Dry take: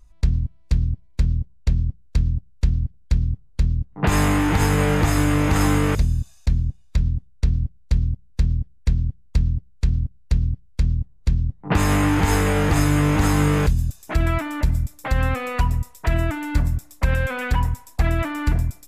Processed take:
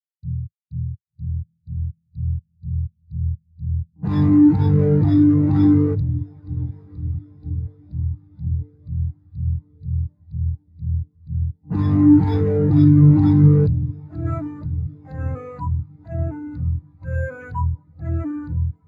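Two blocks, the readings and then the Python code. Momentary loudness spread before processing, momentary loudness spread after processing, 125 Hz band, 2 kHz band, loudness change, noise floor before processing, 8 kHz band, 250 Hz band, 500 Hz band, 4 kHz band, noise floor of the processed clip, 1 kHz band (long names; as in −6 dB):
7 LU, 17 LU, +2.0 dB, below −10 dB, +2.0 dB, −49 dBFS, below −30 dB, +6.5 dB, 0.0 dB, below −15 dB, −66 dBFS, −9.0 dB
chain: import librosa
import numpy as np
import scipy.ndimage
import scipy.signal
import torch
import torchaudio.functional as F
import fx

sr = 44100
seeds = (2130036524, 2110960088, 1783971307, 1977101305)

p1 = fx.wiener(x, sr, points=9)
p2 = scipy.signal.sosfilt(scipy.signal.butter(4, 94.0, 'highpass', fs=sr, output='sos'), p1)
p3 = fx.peak_eq(p2, sr, hz=4600.0, db=12.5, octaves=0.69)
p4 = fx.transient(p3, sr, attack_db=-5, sustain_db=4)
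p5 = fx.sample_hold(p4, sr, seeds[0], rate_hz=8600.0, jitter_pct=0)
p6 = p5 + fx.echo_diffused(p5, sr, ms=1119, feedback_pct=74, wet_db=-11.0, dry=0)
p7 = fx.spectral_expand(p6, sr, expansion=2.5)
y = p7 * 10.0 ** (4.5 / 20.0)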